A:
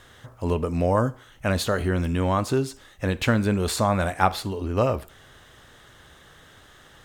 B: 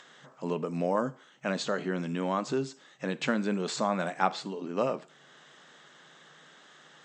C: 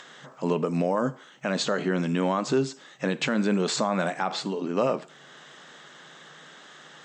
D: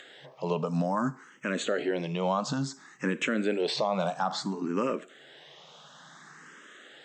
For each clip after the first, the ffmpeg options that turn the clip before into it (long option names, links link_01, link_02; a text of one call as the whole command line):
ffmpeg -i in.wav -filter_complex "[0:a]afftfilt=real='re*between(b*sr/4096,130,8200)':imag='im*between(b*sr/4096,130,8200)':win_size=4096:overlap=0.75,acrossover=split=590[link_01][link_02];[link_02]acompressor=mode=upward:threshold=-44dB:ratio=2.5[link_03];[link_01][link_03]amix=inputs=2:normalize=0,volume=-6dB" out.wav
ffmpeg -i in.wav -af "alimiter=limit=-21.5dB:level=0:latency=1:release=71,volume=7dB" out.wav
ffmpeg -i in.wav -filter_complex "[0:a]asplit=2[link_01][link_02];[link_02]afreqshift=0.58[link_03];[link_01][link_03]amix=inputs=2:normalize=1" out.wav